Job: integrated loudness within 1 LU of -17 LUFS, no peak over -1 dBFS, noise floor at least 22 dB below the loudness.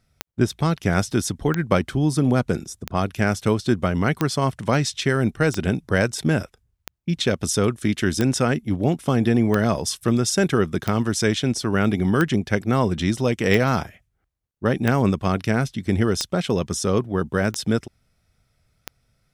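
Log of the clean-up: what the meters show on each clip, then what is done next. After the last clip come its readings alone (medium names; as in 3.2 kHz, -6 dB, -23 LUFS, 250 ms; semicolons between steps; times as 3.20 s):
clicks found 15; loudness -22.0 LUFS; peak level -3.0 dBFS; loudness target -17.0 LUFS
-> de-click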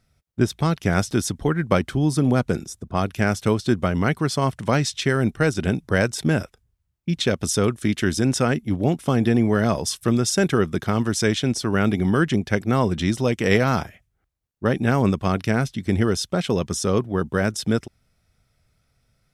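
clicks found 0; loudness -22.0 LUFS; peak level -3.0 dBFS; loudness target -17.0 LUFS
-> trim +5 dB; peak limiter -1 dBFS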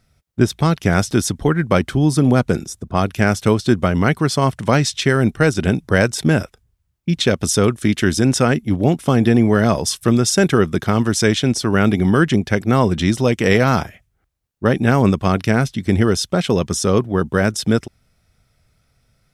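loudness -17.0 LUFS; peak level -1.0 dBFS; noise floor -66 dBFS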